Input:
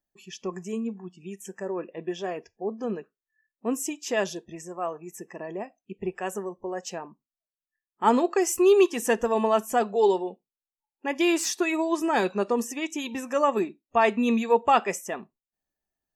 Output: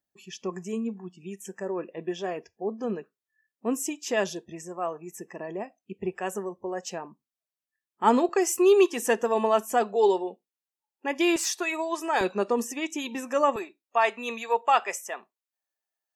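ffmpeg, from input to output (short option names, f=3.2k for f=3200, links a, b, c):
-af "asetnsamples=n=441:p=0,asendcmd='8.29 highpass f 230;11.36 highpass f 520;12.21 highpass f 190;13.56 highpass f 640',highpass=62"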